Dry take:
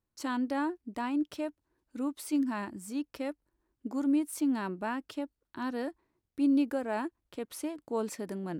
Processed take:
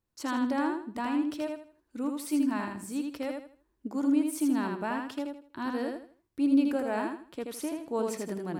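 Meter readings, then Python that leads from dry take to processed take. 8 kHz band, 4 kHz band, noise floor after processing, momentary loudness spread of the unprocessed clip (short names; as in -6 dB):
+2.5 dB, +2.5 dB, -76 dBFS, 11 LU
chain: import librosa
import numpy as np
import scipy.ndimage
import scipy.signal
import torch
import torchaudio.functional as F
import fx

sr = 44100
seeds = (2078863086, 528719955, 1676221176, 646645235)

y = fx.echo_feedback(x, sr, ms=80, feedback_pct=29, wet_db=-4.0)
y = y * 10.0 ** (1.0 / 20.0)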